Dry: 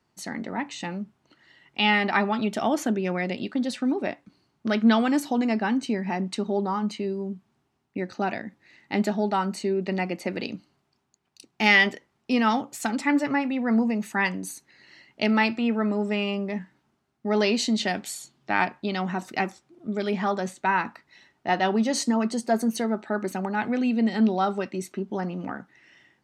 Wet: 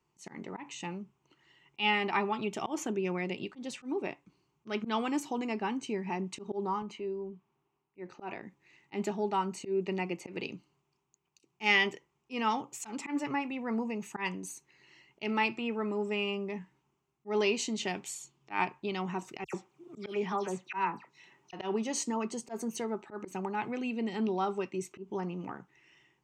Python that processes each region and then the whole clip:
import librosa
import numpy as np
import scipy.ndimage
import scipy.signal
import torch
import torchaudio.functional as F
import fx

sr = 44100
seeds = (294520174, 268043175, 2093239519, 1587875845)

y = fx.chain(x, sr, fx.lowpass(hz=2000.0, slope=6),
    fx.low_shelf(hz=190.0, db=-11.0),
    fx.transient(attack_db=-2, sustain_db=3), at=(6.82, 8.43))
y = fx.chain(y, sr, fx.highpass(hz=120.0, slope=12),
    fx.dispersion(late='lows', ms=92.0, hz=2700.0),
    fx.band_squash(depth_pct=40), at=(19.44, 21.53))
y = fx.ripple_eq(y, sr, per_octave=0.72, db=9)
y = fx.auto_swell(y, sr, attack_ms=108.0)
y = y * librosa.db_to_amplitude(-7.5)